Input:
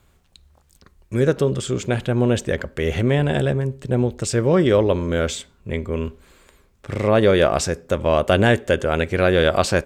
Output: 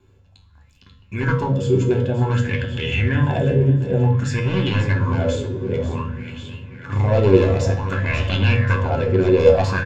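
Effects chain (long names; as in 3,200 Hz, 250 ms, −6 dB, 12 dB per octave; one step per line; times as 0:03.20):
wavefolder on the positive side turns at −13 dBFS
0:08.29–0:09.39: high-shelf EQ 6,300 Hz −11 dB
in parallel at 0 dB: downward compressor, threshold −26 dBFS, peak gain reduction 13 dB
on the sum: tuned comb filter 95 Hz, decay 0.29 s, harmonics all, mix 80%
repeating echo 538 ms, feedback 60%, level −12 dB
convolution reverb RT60 1.1 s, pre-delay 3 ms, DRR 6 dB
auto-filter bell 0.54 Hz 380–3,100 Hz +17 dB
level −11 dB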